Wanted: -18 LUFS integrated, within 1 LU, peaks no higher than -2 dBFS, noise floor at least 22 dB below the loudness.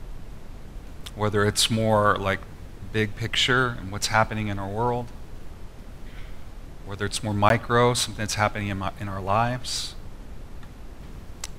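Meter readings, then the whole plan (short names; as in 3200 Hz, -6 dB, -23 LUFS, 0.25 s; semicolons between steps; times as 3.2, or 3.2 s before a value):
dropouts 1; longest dropout 12 ms; noise floor -42 dBFS; noise floor target -46 dBFS; loudness -24.0 LUFS; peak -3.0 dBFS; loudness target -18.0 LUFS
-> interpolate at 7.49, 12 ms; noise print and reduce 6 dB; gain +6 dB; limiter -2 dBFS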